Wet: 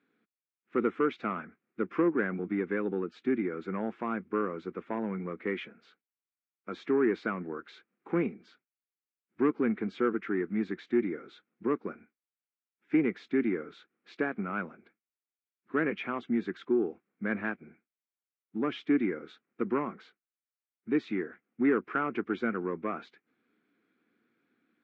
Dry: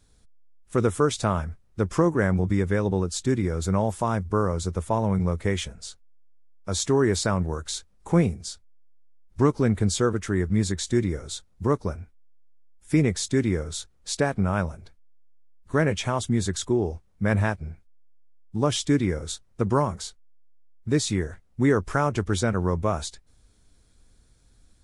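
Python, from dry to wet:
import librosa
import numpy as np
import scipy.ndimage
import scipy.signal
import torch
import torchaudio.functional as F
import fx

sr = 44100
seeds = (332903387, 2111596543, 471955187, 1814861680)

y = 10.0 ** (-12.5 / 20.0) * np.tanh(x / 10.0 ** (-12.5 / 20.0))
y = fx.cabinet(y, sr, low_hz=230.0, low_slope=24, high_hz=2500.0, hz=(230.0, 330.0, 600.0, 910.0, 1400.0, 2300.0), db=(4, 4, -10, -8, 4, 5))
y = y * 10.0 ** (-4.0 / 20.0)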